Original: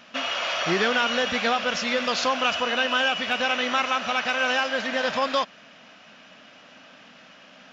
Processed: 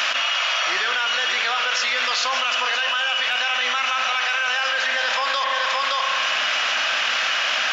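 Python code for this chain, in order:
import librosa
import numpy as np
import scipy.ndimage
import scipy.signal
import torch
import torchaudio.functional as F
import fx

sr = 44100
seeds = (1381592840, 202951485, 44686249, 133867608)

y = scipy.signal.sosfilt(scipy.signal.butter(2, 1100.0, 'highpass', fs=sr, output='sos'), x)
y = y + 10.0 ** (-13.0 / 20.0) * np.pad(y, (int(568 * sr / 1000.0), 0))[:len(y)]
y = fx.rev_spring(y, sr, rt60_s=1.3, pass_ms=(32,), chirp_ms=50, drr_db=9.5)
y = fx.env_flatten(y, sr, amount_pct=100)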